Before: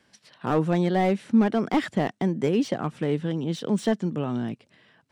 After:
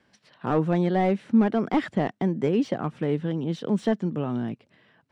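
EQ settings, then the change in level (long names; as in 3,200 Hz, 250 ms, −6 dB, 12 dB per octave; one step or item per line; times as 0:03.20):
low-pass filter 2,600 Hz 6 dB per octave
0.0 dB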